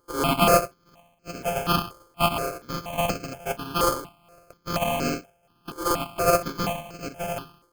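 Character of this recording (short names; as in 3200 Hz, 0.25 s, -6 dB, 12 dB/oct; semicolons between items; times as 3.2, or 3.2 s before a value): a buzz of ramps at a fixed pitch in blocks of 64 samples; random-step tremolo; aliases and images of a low sample rate 1900 Hz, jitter 0%; notches that jump at a steady rate 4.2 Hz 710–3400 Hz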